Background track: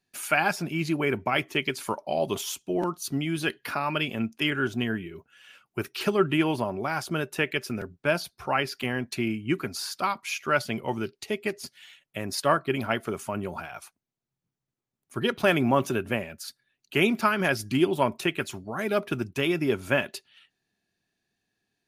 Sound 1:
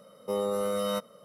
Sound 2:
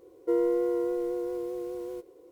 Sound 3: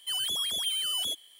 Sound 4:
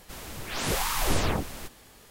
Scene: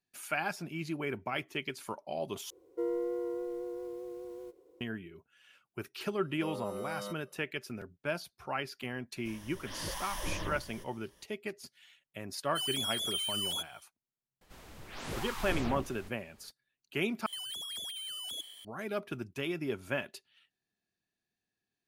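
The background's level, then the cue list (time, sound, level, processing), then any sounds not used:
background track −10 dB
0:02.50: overwrite with 2 −8 dB
0:06.13: mix in 1 −12 dB
0:09.16: mix in 4 −13 dB + EQ curve with evenly spaced ripples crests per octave 1.2, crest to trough 10 dB
0:12.48: mix in 3 −4.5 dB, fades 0.10 s
0:14.41: mix in 4 −10.5 dB + high-shelf EQ 5,000 Hz −8 dB
0:17.26: overwrite with 3 −3 dB + compressor whose output falls as the input rises −38 dBFS

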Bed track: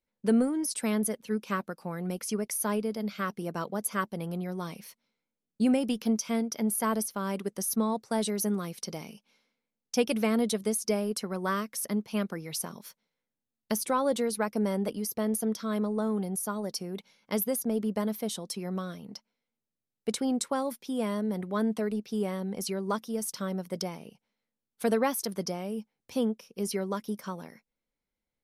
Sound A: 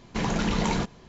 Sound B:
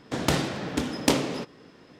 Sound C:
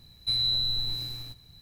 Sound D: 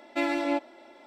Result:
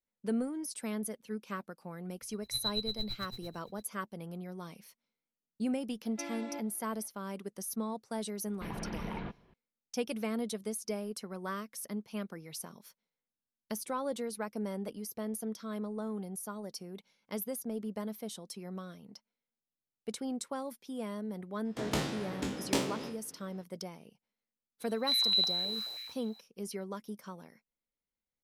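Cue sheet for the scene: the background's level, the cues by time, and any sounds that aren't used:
bed track −8.5 dB
0:02.22: mix in C −4.5 dB + tremolo with a sine in dB 8.9 Hz, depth 23 dB
0:06.02: mix in D −15 dB
0:08.46: mix in A −13.5 dB + low-pass filter 3,000 Hz 24 dB per octave
0:21.65: mix in B −10.5 dB + peak hold with a decay on every bin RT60 0.40 s
0:24.80: mix in C −4 dB + high-pass on a step sequencer 9.4 Hz 460–2,700 Hz

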